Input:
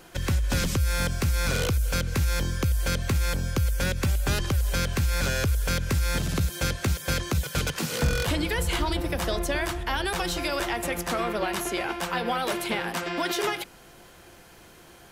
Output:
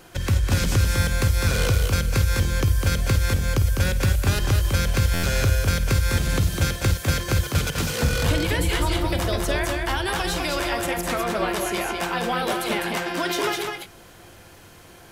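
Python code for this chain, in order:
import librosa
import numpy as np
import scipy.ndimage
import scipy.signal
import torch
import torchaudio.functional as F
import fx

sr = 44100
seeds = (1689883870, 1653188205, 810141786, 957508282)

y = fx.peak_eq(x, sr, hz=100.0, db=8.5, octaves=0.28)
y = fx.echo_multitap(y, sr, ms=(51, 203, 224), db=(-13.0, -4.5, -12.5))
y = fx.buffer_glitch(y, sr, at_s=(5.13,), block=512, repeats=8)
y = y * 10.0 ** (1.5 / 20.0)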